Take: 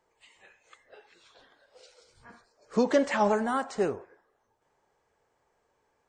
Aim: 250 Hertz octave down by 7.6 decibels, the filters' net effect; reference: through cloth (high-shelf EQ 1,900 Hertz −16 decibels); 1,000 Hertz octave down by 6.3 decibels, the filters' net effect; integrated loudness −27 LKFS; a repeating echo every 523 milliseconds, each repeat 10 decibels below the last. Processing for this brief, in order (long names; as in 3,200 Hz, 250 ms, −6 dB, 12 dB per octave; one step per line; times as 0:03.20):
parametric band 250 Hz −8.5 dB
parametric band 1,000 Hz −3.5 dB
high-shelf EQ 1,900 Hz −16 dB
repeating echo 523 ms, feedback 32%, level −10 dB
level +6 dB